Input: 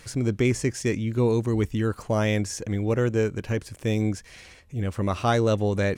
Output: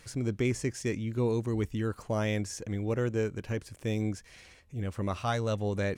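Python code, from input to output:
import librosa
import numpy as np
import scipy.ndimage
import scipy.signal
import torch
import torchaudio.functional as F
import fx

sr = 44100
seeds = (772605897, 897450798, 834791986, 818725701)

y = fx.peak_eq(x, sr, hz=340.0, db=fx.line((5.17, -13.5), (5.65, -3.5)), octaves=0.88, at=(5.17, 5.65), fade=0.02)
y = y * 10.0 ** (-6.5 / 20.0)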